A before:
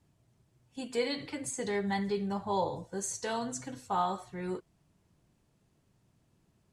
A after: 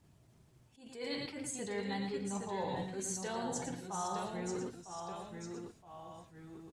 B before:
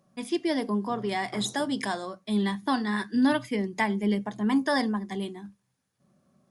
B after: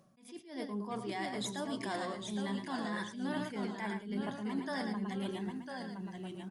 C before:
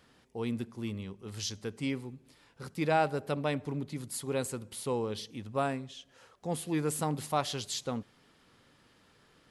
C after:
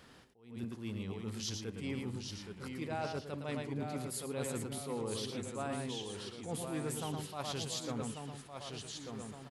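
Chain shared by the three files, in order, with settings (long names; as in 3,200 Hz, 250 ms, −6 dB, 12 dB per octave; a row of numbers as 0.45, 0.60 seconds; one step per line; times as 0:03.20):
single-tap delay 112 ms −8.5 dB
reversed playback
downward compressor 5 to 1, threshold −42 dBFS
reversed playback
delay with pitch and tempo change per echo 723 ms, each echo −1 semitone, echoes 2, each echo −6 dB
level that may rise only so fast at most 120 dB per second
level +4.5 dB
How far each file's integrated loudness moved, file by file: −5.5, −10.5, −6.0 LU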